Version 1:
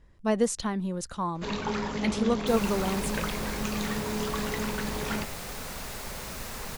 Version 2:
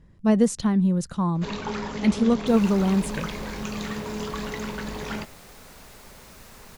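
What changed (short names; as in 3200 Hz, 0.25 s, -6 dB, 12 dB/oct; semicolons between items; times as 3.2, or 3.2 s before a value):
speech: add bell 160 Hz +12 dB 1.7 oct; second sound -9.5 dB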